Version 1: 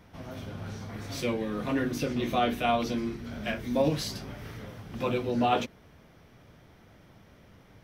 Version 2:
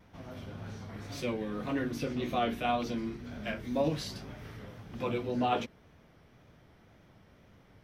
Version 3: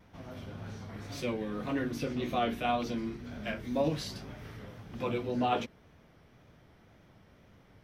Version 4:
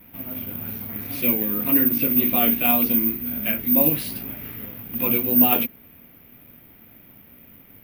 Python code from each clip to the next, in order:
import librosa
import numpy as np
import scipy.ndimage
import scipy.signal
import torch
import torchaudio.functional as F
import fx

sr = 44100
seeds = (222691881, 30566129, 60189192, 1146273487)

y1 = fx.high_shelf(x, sr, hz=6500.0, db=-5.0)
y1 = fx.vibrato(y1, sr, rate_hz=1.9, depth_cents=45.0)
y1 = y1 * librosa.db_to_amplitude(-4.0)
y2 = y1
y3 = fx.graphic_eq_15(y2, sr, hz=(250, 2500, 6300), db=(10, 10, -4))
y3 = (np.kron(y3[::3], np.eye(3)[0]) * 3)[:len(y3)]
y3 = y3 * librosa.db_to_amplitude(2.5)